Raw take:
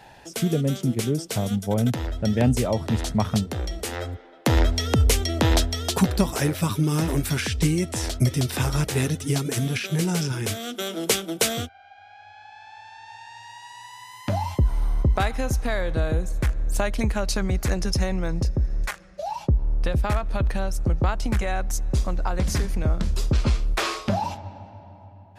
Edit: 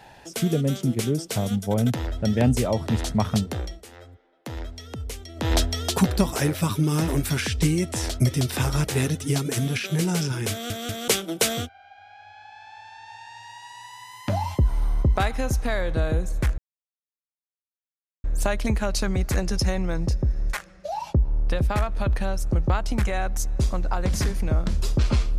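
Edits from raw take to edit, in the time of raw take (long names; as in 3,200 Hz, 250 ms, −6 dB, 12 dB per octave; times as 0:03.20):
0:03.56–0:05.60: duck −15 dB, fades 0.25 s
0:10.51: stutter in place 0.19 s, 3 plays
0:16.58: splice in silence 1.66 s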